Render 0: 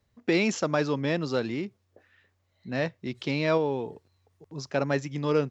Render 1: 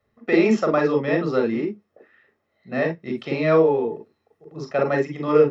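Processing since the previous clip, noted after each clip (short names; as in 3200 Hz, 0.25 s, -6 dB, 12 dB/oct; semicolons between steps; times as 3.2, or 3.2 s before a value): reverb, pre-delay 34 ms, DRR 2.5 dB; gain -5 dB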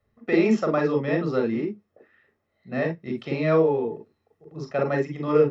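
low shelf 140 Hz +9 dB; gain -4 dB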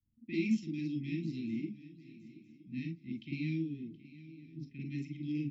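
Chebyshev band-stop 320–2200 Hz, order 5; low-pass opened by the level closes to 690 Hz, open at -25 dBFS; swung echo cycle 0.964 s, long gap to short 3:1, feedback 35%, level -17.5 dB; gain -8.5 dB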